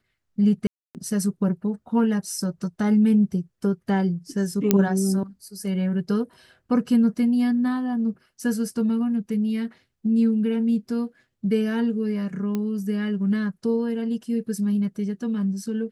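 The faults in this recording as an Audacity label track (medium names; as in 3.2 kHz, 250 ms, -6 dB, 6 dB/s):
0.670000	0.950000	dropout 278 ms
4.710000	4.710000	pop -3 dBFS
12.550000	12.550000	pop -15 dBFS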